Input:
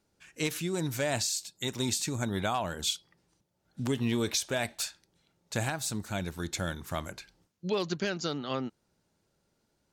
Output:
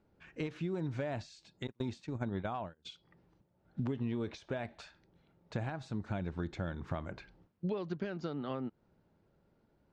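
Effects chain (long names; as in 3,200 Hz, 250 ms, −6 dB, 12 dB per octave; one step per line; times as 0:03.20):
0:01.67–0:02.87: noise gate −31 dBFS, range −37 dB
downward compressor 6 to 1, threshold −38 dBFS, peak gain reduction 12.5 dB
head-to-tape spacing loss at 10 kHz 39 dB
level +6 dB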